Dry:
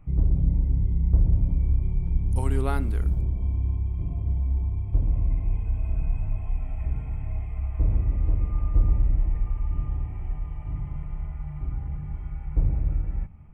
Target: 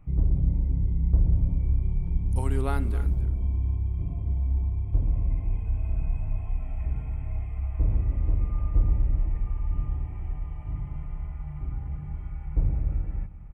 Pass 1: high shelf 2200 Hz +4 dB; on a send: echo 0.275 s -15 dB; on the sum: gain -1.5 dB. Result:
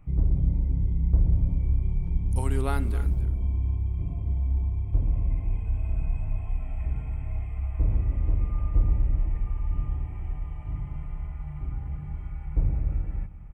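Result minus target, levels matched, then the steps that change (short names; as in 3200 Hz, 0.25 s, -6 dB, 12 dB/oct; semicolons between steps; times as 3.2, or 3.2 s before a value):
4000 Hz band +3.0 dB
remove: high shelf 2200 Hz +4 dB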